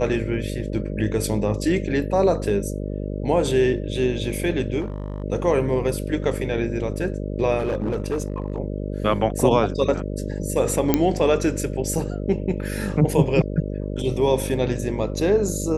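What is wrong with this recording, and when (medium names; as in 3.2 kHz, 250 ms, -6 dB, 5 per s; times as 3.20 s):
buzz 50 Hz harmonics 12 -28 dBFS
4.80–5.24 s: clipped -24 dBFS
7.58–8.60 s: clipped -19.5 dBFS
10.94 s: pop -3 dBFS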